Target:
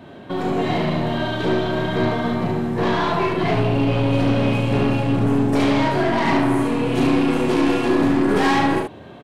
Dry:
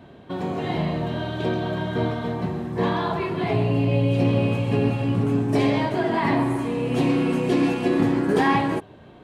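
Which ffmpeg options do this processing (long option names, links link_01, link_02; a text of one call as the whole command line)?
ffmpeg -i in.wav -filter_complex "[0:a]highpass=frequency=110:poles=1,aeval=exprs='(tanh(7.94*val(0)+0.55)-tanh(0.55))/7.94':channel_layout=same,asplit=2[link_01][link_02];[link_02]aeval=exprs='0.188*sin(PI/2*2.82*val(0)/0.188)':channel_layout=same,volume=-12dB[link_03];[link_01][link_03]amix=inputs=2:normalize=0,aecho=1:1:35|72:0.531|0.668,volume=1.5dB" out.wav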